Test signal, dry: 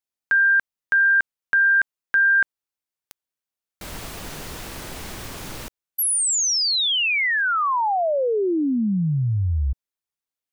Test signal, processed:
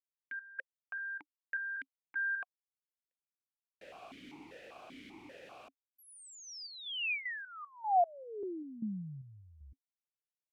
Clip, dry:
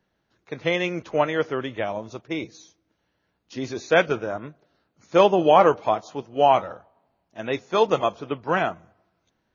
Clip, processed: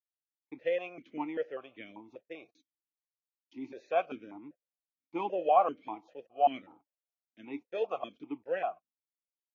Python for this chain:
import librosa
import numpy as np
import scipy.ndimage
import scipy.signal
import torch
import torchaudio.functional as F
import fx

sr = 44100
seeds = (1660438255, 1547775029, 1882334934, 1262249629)

y = fx.gate_hold(x, sr, open_db=-37.0, close_db=-42.0, hold_ms=23.0, range_db=-33, attack_ms=1.1, release_ms=34.0)
y = fx.vowel_held(y, sr, hz=5.1)
y = y * librosa.db_to_amplitude(-3.0)